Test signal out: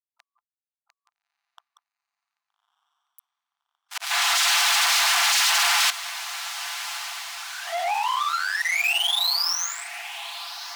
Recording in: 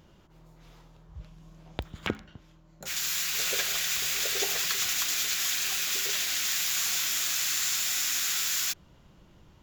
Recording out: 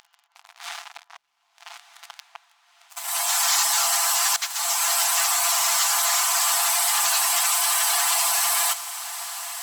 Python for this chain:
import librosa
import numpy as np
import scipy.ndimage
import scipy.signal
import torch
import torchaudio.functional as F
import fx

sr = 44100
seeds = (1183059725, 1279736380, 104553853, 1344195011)

p1 = scipy.signal.sosfilt(scipy.signal.butter(2, 5700.0, 'lowpass', fs=sr, output='sos'), x)
p2 = fx.spec_gate(p1, sr, threshold_db=-15, keep='weak')
p3 = p2 + 0.92 * np.pad(p2, (int(5.9 * sr / 1000.0), 0))[:len(p2)]
p4 = fx.auto_swell(p3, sr, attack_ms=595.0)
p5 = fx.fuzz(p4, sr, gain_db=50.0, gate_db=-56.0)
p6 = p4 + (p5 * librosa.db_to_amplitude(-3.0))
p7 = fx.brickwall_highpass(p6, sr, low_hz=670.0)
p8 = p7 + fx.echo_diffused(p7, sr, ms=1247, feedback_pct=63, wet_db=-14, dry=0)
p9 = fx.transformer_sat(p8, sr, knee_hz=2500.0)
y = p9 * librosa.db_to_amplitude(-1.5)